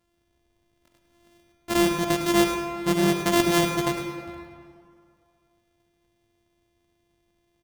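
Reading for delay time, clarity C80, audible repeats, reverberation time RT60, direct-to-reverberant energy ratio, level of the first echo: 0.105 s, 5.0 dB, 1, 2.3 s, 3.5 dB, -9.5 dB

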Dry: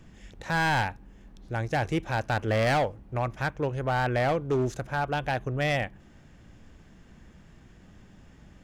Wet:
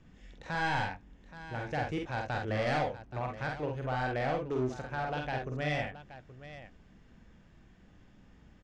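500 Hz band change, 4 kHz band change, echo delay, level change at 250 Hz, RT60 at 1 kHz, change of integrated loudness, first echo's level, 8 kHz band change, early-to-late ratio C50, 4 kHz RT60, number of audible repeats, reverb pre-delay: -6.0 dB, -6.5 dB, 47 ms, -5.5 dB, none, -6.0 dB, -3.0 dB, under -10 dB, none, none, 2, none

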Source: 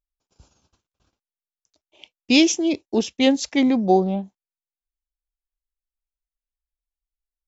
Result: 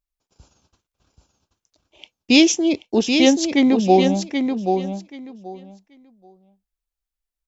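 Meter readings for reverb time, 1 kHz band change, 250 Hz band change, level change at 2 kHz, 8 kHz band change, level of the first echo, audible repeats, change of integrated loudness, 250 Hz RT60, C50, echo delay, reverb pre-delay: none, +3.5 dB, +3.5 dB, +3.5 dB, n/a, -6.0 dB, 2, +2.0 dB, none, none, 0.781 s, none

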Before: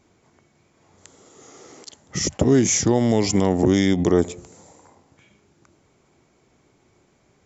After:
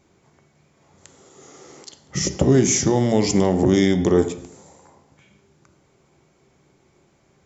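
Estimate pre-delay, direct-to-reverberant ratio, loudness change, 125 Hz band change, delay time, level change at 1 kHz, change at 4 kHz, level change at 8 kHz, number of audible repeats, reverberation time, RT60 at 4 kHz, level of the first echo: 3 ms, 8.0 dB, +1.0 dB, +1.5 dB, none, +1.0 dB, +0.5 dB, n/a, none, 0.70 s, 0.65 s, none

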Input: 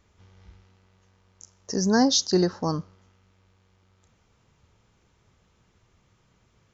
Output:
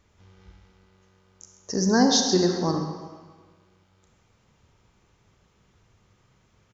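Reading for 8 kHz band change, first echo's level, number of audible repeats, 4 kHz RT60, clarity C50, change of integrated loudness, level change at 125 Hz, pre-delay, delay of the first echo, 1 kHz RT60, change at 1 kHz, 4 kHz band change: n/a, -13.5 dB, 1, 1.2 s, 4.5 dB, +1.0 dB, +1.0 dB, 36 ms, 0.132 s, 1.5 s, +2.0 dB, +1.5 dB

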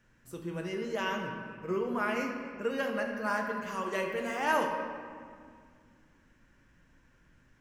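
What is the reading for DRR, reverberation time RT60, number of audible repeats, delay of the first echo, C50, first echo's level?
1.0 dB, 2.1 s, none, none, 4.0 dB, none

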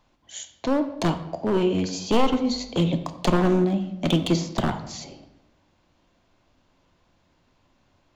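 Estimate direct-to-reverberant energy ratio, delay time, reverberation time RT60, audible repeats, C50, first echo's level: 8.0 dB, none, 0.95 s, none, 11.5 dB, none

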